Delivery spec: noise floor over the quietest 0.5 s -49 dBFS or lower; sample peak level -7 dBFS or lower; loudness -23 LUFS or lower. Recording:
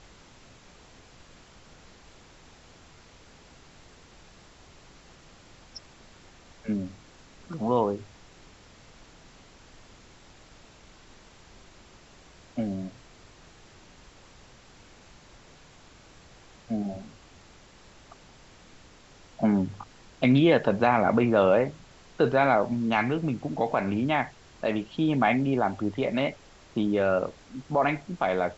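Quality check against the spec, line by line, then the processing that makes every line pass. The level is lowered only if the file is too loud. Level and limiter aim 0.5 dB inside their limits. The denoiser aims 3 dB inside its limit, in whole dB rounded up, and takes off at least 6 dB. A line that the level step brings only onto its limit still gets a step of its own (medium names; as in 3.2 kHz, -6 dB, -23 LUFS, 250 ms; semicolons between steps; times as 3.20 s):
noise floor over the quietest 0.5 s -53 dBFS: pass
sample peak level -8.5 dBFS: pass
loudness -26.0 LUFS: pass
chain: none needed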